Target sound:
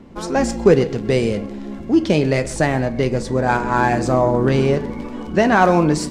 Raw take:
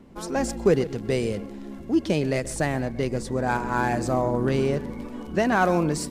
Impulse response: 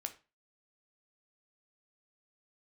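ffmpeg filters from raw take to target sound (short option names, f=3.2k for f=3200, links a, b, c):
-filter_complex "[0:a]asplit=2[a][b];[1:a]atrim=start_sample=2205,lowpass=8.2k[c];[b][c]afir=irnorm=-1:irlink=0,volume=6.5dB[d];[a][d]amix=inputs=2:normalize=0,volume=-1dB"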